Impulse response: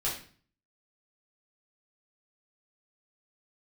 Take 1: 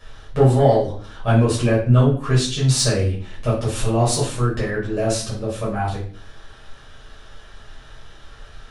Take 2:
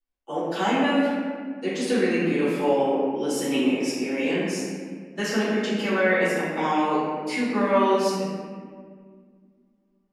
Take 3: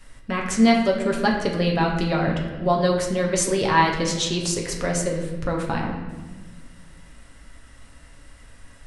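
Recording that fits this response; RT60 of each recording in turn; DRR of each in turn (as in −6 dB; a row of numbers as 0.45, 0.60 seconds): 1; 0.45, 1.9, 1.3 seconds; −7.5, −12.5, −1.0 decibels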